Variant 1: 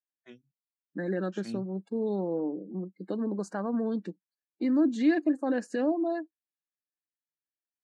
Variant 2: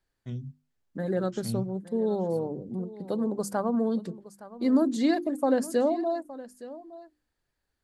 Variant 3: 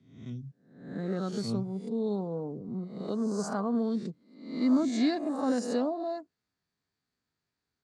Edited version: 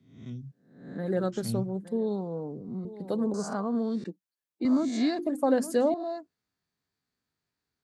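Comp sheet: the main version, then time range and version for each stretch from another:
3
0:01.01–0:02.02: punch in from 2, crossfade 0.24 s
0:02.85–0:03.34: punch in from 2
0:04.04–0:04.65: punch in from 1
0:05.19–0:05.94: punch in from 2

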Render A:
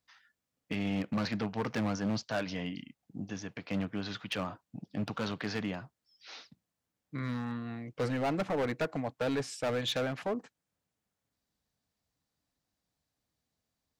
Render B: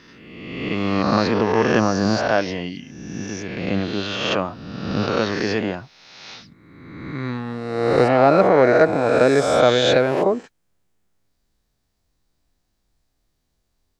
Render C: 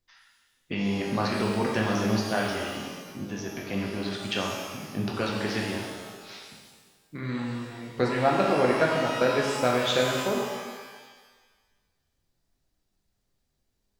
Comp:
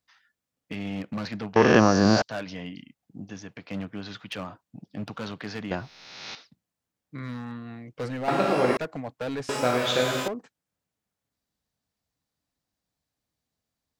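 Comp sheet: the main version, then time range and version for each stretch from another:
A
0:01.56–0:02.22: punch in from B
0:05.71–0:06.35: punch in from B
0:08.28–0:08.77: punch in from C
0:09.49–0:10.28: punch in from C

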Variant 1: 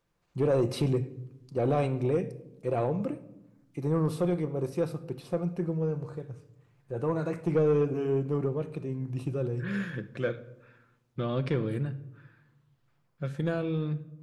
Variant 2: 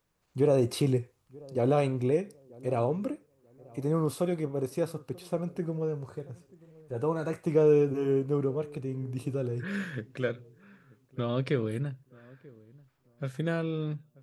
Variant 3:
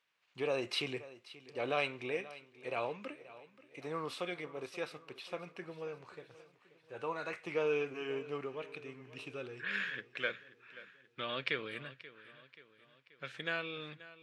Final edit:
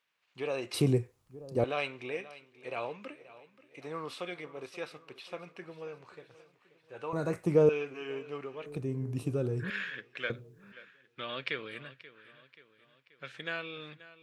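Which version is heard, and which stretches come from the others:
3
0:00.74–0:01.64: punch in from 2
0:07.13–0:07.69: punch in from 2
0:08.66–0:09.70: punch in from 2
0:10.30–0:10.72: punch in from 2
not used: 1

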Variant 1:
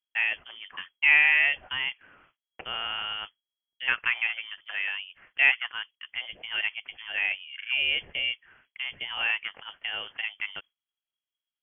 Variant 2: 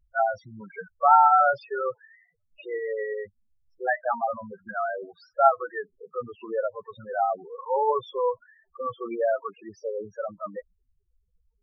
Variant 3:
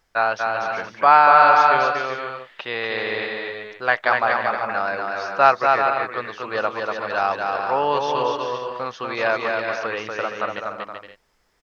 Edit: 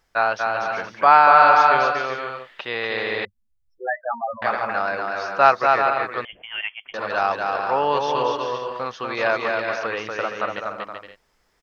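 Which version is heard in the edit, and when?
3
0:03.25–0:04.42: punch in from 2
0:06.25–0:06.94: punch in from 1

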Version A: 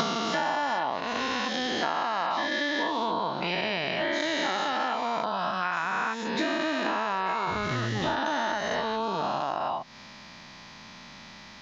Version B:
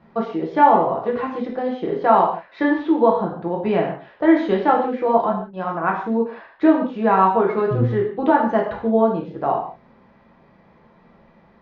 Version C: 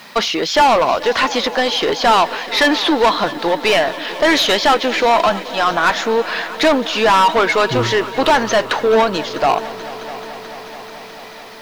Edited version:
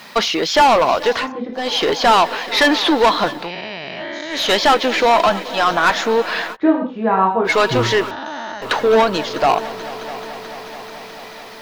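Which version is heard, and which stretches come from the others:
C
0:01.21–0:01.64: punch in from B, crossfade 0.24 s
0:03.40–0:04.41: punch in from A, crossfade 0.24 s
0:06.54–0:07.47: punch in from B, crossfade 0.06 s
0:08.11–0:08.62: punch in from A

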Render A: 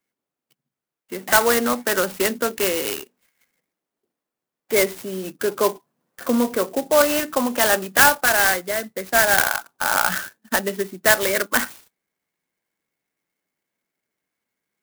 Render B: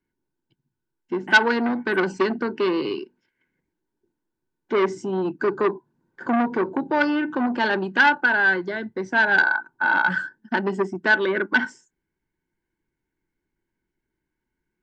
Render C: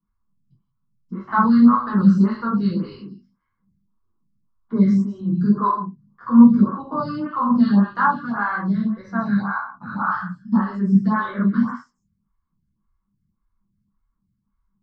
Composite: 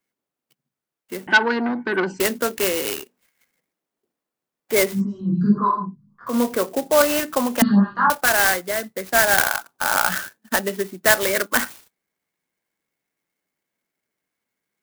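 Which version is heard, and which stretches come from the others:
A
0:01.27–0:02.20: punch in from B
0:04.97–0:06.31: punch in from C, crossfade 0.10 s
0:07.62–0:08.10: punch in from C

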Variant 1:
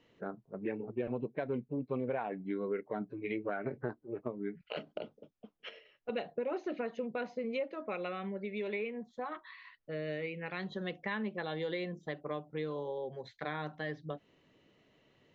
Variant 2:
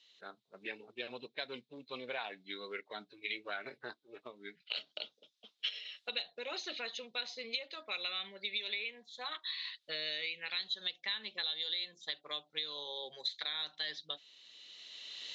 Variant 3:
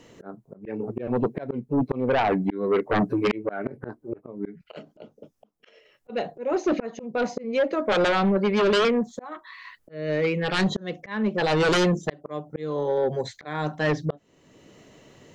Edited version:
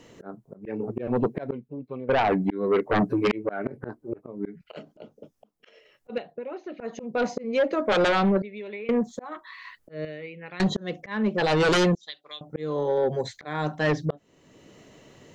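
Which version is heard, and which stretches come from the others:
3
0:01.52–0:02.09: punch in from 1
0:06.18–0:06.80: punch in from 1
0:08.42–0:08.89: punch in from 1
0:10.05–0:10.60: punch in from 1
0:11.95–0:12.41: punch in from 2

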